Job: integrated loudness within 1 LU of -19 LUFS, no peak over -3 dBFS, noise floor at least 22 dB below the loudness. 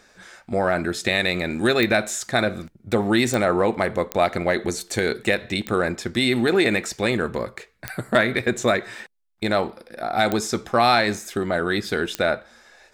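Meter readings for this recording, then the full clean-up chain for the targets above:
clicks 7; loudness -22.5 LUFS; peak -5.5 dBFS; loudness target -19.0 LUFS
-> de-click; gain +3.5 dB; limiter -3 dBFS

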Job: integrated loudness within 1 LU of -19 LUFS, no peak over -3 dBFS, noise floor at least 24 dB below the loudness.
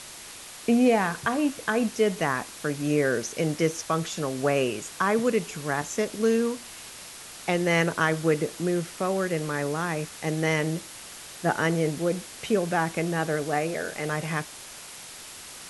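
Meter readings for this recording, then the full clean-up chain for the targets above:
noise floor -43 dBFS; noise floor target -51 dBFS; loudness -26.5 LUFS; peak -8.5 dBFS; loudness target -19.0 LUFS
-> noise print and reduce 8 dB; gain +7.5 dB; limiter -3 dBFS

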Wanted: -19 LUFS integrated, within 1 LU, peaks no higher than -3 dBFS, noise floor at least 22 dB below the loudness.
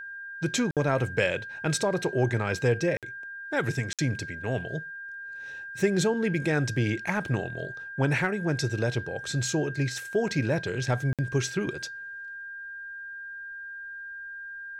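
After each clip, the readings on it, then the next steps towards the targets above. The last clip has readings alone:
dropouts 4; longest dropout 57 ms; steady tone 1600 Hz; tone level -37 dBFS; loudness -29.5 LUFS; peak -11.0 dBFS; loudness target -19.0 LUFS
-> interpolate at 0.71/2.97/3.93/11.13, 57 ms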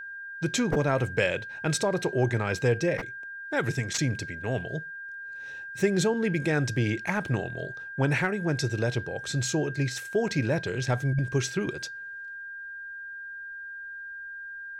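dropouts 0; steady tone 1600 Hz; tone level -37 dBFS
-> notch 1600 Hz, Q 30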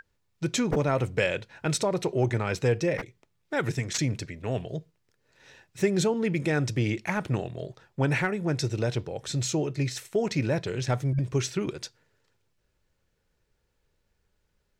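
steady tone none; loudness -28.5 LUFS; peak -11.5 dBFS; loudness target -19.0 LUFS
-> gain +9.5 dB; limiter -3 dBFS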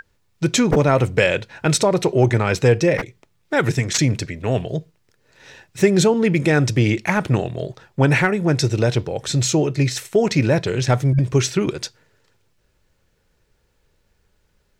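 loudness -19.0 LUFS; peak -3.0 dBFS; noise floor -65 dBFS

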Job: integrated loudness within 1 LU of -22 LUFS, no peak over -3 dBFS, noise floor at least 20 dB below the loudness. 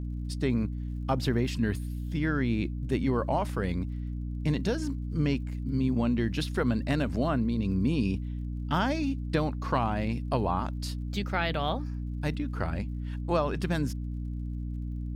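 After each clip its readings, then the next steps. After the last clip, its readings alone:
ticks 48/s; hum 60 Hz; harmonics up to 300 Hz; hum level -31 dBFS; loudness -30.0 LUFS; peak -14.0 dBFS; loudness target -22.0 LUFS
-> de-click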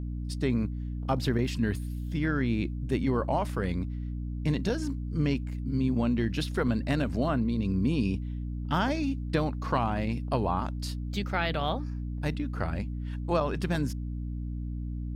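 ticks 0.33/s; hum 60 Hz; harmonics up to 300 Hz; hum level -31 dBFS
-> notches 60/120/180/240/300 Hz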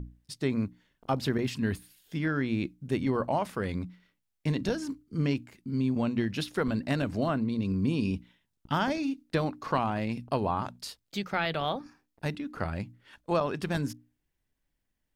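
hum none; loudness -31.5 LUFS; peak -15.0 dBFS; loudness target -22.0 LUFS
-> gain +9.5 dB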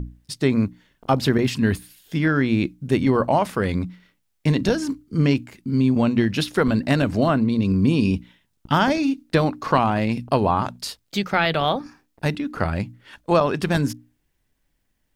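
loudness -22.0 LUFS; peak -5.5 dBFS; noise floor -71 dBFS

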